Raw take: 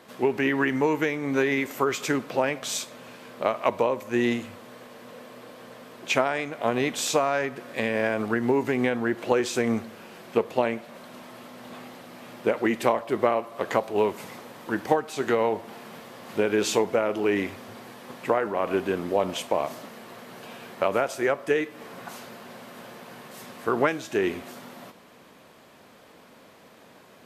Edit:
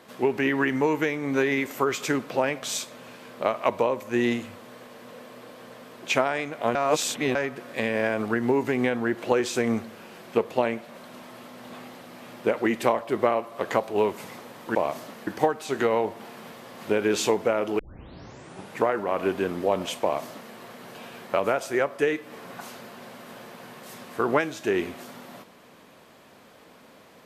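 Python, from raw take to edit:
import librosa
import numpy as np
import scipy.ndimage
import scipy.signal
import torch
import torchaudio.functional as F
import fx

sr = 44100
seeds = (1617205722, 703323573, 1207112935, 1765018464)

y = fx.edit(x, sr, fx.reverse_span(start_s=6.75, length_s=0.6),
    fx.tape_start(start_s=17.27, length_s=1.06),
    fx.duplicate(start_s=19.5, length_s=0.52, to_s=14.75), tone=tone)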